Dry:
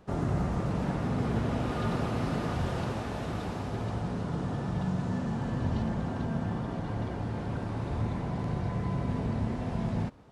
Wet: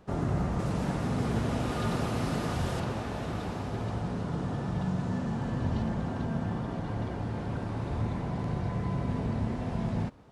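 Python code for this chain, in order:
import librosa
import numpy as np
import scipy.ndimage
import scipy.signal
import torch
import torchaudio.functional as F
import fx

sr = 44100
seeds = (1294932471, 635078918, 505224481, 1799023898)

y = fx.high_shelf(x, sr, hz=5100.0, db=9.5, at=(0.59, 2.8))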